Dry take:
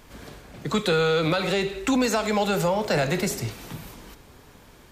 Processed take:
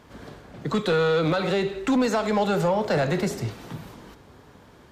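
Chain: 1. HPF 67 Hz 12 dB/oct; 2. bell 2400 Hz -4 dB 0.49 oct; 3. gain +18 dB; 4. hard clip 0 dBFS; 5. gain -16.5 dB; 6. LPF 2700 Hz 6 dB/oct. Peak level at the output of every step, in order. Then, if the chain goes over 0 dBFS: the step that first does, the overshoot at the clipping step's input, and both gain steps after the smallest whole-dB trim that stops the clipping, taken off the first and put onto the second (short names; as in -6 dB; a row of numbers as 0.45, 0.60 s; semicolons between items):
-11.0, -11.5, +6.5, 0.0, -16.5, -16.5 dBFS; step 3, 6.5 dB; step 3 +11 dB, step 5 -9.5 dB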